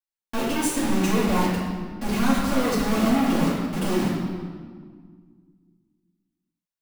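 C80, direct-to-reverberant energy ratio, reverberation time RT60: 2.5 dB, −8.5 dB, 1.7 s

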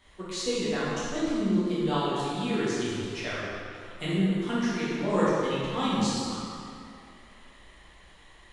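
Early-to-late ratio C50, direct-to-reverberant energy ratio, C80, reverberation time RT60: −3.5 dB, −10.0 dB, −1.5 dB, 2.4 s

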